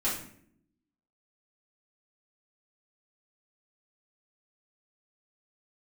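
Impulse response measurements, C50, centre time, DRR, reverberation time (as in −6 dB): 4.5 dB, 39 ms, −9.5 dB, 0.65 s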